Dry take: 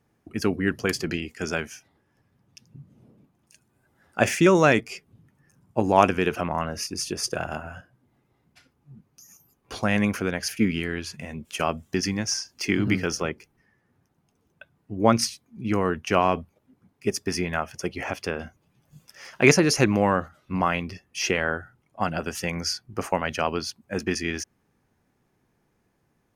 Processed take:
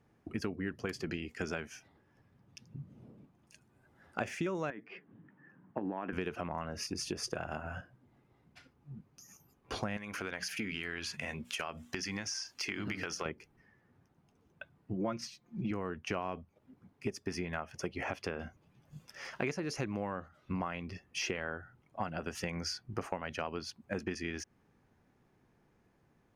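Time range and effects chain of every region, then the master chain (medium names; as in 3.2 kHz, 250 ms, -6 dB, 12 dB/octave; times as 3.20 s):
4.70–6.13 s: compression 8:1, threshold -26 dBFS + cabinet simulation 190–2900 Hz, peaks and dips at 190 Hz +6 dB, 300 Hz +7 dB, 970 Hz +3 dB, 1.7 kHz +9 dB, 2.4 kHz -4 dB
9.97–13.26 s: tilt shelf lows -6.5 dB, about 660 Hz + hum notches 60/120/180/240/300 Hz + compression 3:1, threshold -30 dBFS
14.93–15.71 s: peaking EQ 10 kHz -10 dB 0.46 oct + comb 5.7 ms, depth 75%
whole clip: treble shelf 6.3 kHz -11.5 dB; compression 6:1, threshold -34 dBFS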